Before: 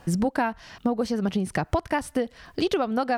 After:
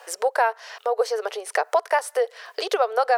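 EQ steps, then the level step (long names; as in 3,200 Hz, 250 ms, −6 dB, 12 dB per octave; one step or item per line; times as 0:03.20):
Chebyshev high-pass filter 430 Hz, order 6
dynamic equaliser 2,900 Hz, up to −6 dB, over −47 dBFS, Q 1.3
+7.0 dB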